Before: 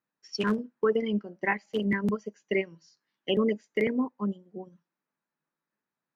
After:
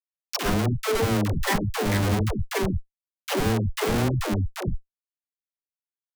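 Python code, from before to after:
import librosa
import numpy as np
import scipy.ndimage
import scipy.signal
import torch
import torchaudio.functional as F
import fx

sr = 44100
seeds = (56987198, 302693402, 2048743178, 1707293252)

y = fx.octave_divider(x, sr, octaves=1, level_db=1.0)
y = fx.low_shelf(y, sr, hz=69.0, db=8.0, at=(1.7, 3.9))
y = fx.schmitt(y, sr, flips_db=-34.0)
y = fx.dispersion(y, sr, late='lows', ms=124.0, hz=350.0)
y = F.gain(torch.from_numpy(y), 6.5).numpy()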